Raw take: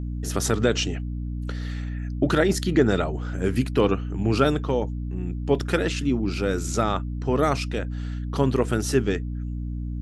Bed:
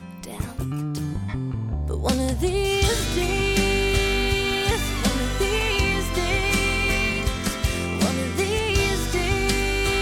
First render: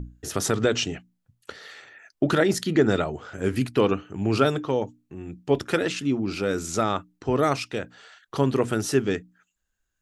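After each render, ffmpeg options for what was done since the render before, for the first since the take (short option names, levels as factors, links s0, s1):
-af "bandreject=f=60:t=h:w=6,bandreject=f=120:t=h:w=6,bandreject=f=180:t=h:w=6,bandreject=f=240:t=h:w=6,bandreject=f=300:t=h:w=6"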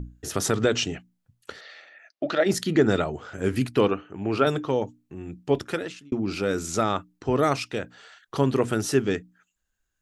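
-filter_complex "[0:a]asplit=3[s0][s1][s2];[s0]afade=t=out:st=1.6:d=0.02[s3];[s1]highpass=390,equalizer=f=410:t=q:w=4:g=-10,equalizer=f=610:t=q:w=4:g=6,equalizer=f=970:t=q:w=4:g=-8,equalizer=f=1500:t=q:w=4:g=-4,equalizer=f=3200:t=q:w=4:g=-3,lowpass=f=5100:w=0.5412,lowpass=f=5100:w=1.3066,afade=t=in:st=1.6:d=0.02,afade=t=out:st=2.45:d=0.02[s4];[s2]afade=t=in:st=2.45:d=0.02[s5];[s3][s4][s5]amix=inputs=3:normalize=0,asettb=1/sr,asplit=3[s6][s7][s8];[s6]atrim=end=3.884[s9];[s7]atrim=start=3.88:end=4.47,asetpts=PTS-STARTPTS,afade=t=in:d=0.004:c=qsin,afade=t=out:st=0.586:d=0.004:c=qsin,bass=f=250:g=-7,treble=f=4000:g=-12[s10];[s8]atrim=start=4.466[s11];[s9][s10]acrossfade=d=0.004:c1=hsin:c2=qsin[s12];[s12][s11]acrossfade=d=0.004:c1=qsin:c2=hsin,asplit=2[s13][s14];[s13]atrim=end=6.12,asetpts=PTS-STARTPTS,afade=t=out:st=5.46:d=0.66[s15];[s14]atrim=start=6.12,asetpts=PTS-STARTPTS,afade=t=in:d=0.004:c=hsin[s16];[s15][s16]concat=n=2:v=0:a=1"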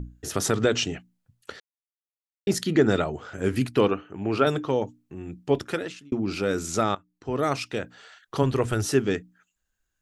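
-filter_complex "[0:a]asplit=3[s0][s1][s2];[s0]afade=t=out:st=8.42:d=0.02[s3];[s1]asubboost=boost=9.5:cutoff=64,afade=t=in:st=8.42:d=0.02,afade=t=out:st=8.84:d=0.02[s4];[s2]afade=t=in:st=8.84:d=0.02[s5];[s3][s4][s5]amix=inputs=3:normalize=0,asplit=4[s6][s7][s8][s9];[s6]atrim=end=1.6,asetpts=PTS-STARTPTS,afade=t=out:st=1.596:d=0.004:c=hsin[s10];[s7]atrim=start=1.6:end=2.47,asetpts=PTS-STARTPTS,volume=0[s11];[s8]atrim=start=2.47:end=6.95,asetpts=PTS-STARTPTS,afade=t=in:d=0.004:c=hsin,afade=t=out:st=4.476:d=0.004:c=hsin:silence=0.105925[s12];[s9]atrim=start=6.95,asetpts=PTS-STARTPTS,afade=t=in:d=0.74:silence=0.105925[s13];[s10][s11][s12][s13]concat=n=4:v=0:a=1"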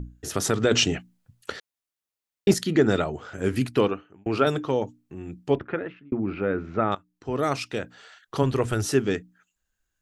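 -filter_complex "[0:a]asettb=1/sr,asplit=3[s0][s1][s2];[s0]atrim=end=0.714[s3];[s1]atrim=start=0.71:end=2.54,asetpts=PTS-STARTPTS,afade=t=in:d=0.004:c=qsin,afade=t=out:st=1.826:d=0.004:c=qsin,acontrast=43[s4];[s2]atrim=start=2.536[s5];[s3][s4]acrossfade=d=0.004:c1=hsin:c2=qsin[s6];[s6][s5]acrossfade=d=0.004:c1=qsin:c2=hsin,asettb=1/sr,asplit=3[s7][s8][s9];[s7]atrim=end=5.554[s10];[s8]atrim=start=5.55:end=6.92,asetpts=PTS-STARTPTS,afade=t=in:d=0.004:c=qsin,afade=t=out:st=1.366:d=0.004:c=qsin,lowpass=f=2200:w=0.5412,lowpass=f=2200:w=1.3066[s11];[s9]atrim=start=6.916[s12];[s10][s11]acrossfade=d=0.004:c1=hsin:c2=qsin[s13];[s13][s12]acrossfade=d=0.004:c1=qsin:c2=hsin,asplit=2[s14][s15];[s14]atrim=end=4.26,asetpts=PTS-STARTPTS,afade=t=out:st=3.78:d=0.48[s16];[s15]atrim=start=4.26,asetpts=PTS-STARTPTS,afade=t=in:d=0.004:c=hsin[s17];[s16][s17]concat=n=2:v=0:a=1"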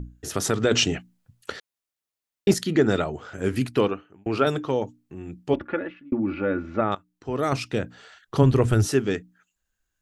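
-filter_complex "[0:a]asettb=1/sr,asplit=3[s0][s1][s2];[s0]atrim=end=5.534[s3];[s1]atrim=start=5.53:end=6.81,asetpts=PTS-STARTPTS,afade=t=in:d=0.004:c=qsin,afade=t=out:st=1.276:d=0.004:c=qsin,aecho=1:1:3.5:0.63,atrim=end_sample=56448[s4];[s2]atrim=start=6.806[s5];[s3][s4]acrossfade=d=0.004:c1=hsin:c2=qsin[s6];[s6][s5]acrossfade=d=0.004:c1=qsin:c2=hsin,asettb=1/sr,asplit=3[s7][s8][s9];[s7]atrim=end=7.524[s10];[s8]atrim=start=7.52:end=8.88,asetpts=PTS-STARTPTS,afade=t=in:d=0.004:c=qsin,afade=t=out:st=1.356:d=0.004:c=qsin,lowshelf=f=320:g=9[s11];[s9]atrim=start=8.876[s12];[s10][s11]acrossfade=d=0.004:c1=hsin:c2=qsin[s13];[s13][s12]acrossfade=d=0.004:c1=qsin:c2=hsin"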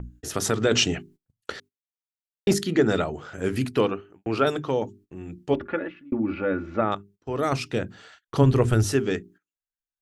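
-af "bandreject=f=50:t=h:w=6,bandreject=f=100:t=h:w=6,bandreject=f=150:t=h:w=6,bandreject=f=200:t=h:w=6,bandreject=f=250:t=h:w=6,bandreject=f=300:t=h:w=6,bandreject=f=350:t=h:w=6,bandreject=f=400:t=h:w=6,agate=range=0.0708:threshold=0.00355:ratio=16:detection=peak"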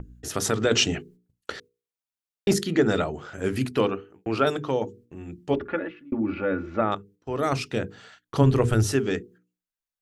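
-af "bandreject=f=60:t=h:w=6,bandreject=f=120:t=h:w=6,bandreject=f=180:t=h:w=6,bandreject=f=240:t=h:w=6,bandreject=f=300:t=h:w=6,bandreject=f=360:t=h:w=6,bandreject=f=420:t=h:w=6,bandreject=f=480:t=h:w=6"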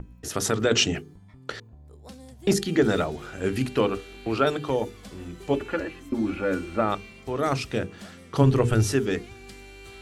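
-filter_complex "[1:a]volume=0.075[s0];[0:a][s0]amix=inputs=2:normalize=0"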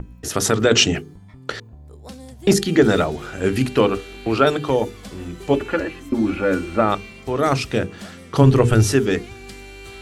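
-af "volume=2.11,alimiter=limit=0.891:level=0:latency=1"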